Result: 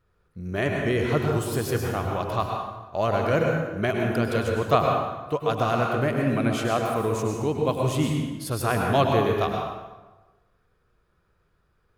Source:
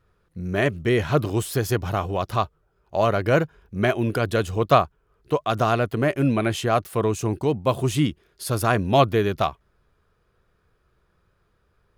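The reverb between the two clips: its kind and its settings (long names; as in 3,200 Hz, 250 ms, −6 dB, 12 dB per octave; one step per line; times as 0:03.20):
dense smooth reverb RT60 1.2 s, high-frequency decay 0.7×, pre-delay 90 ms, DRR 0.5 dB
level −4.5 dB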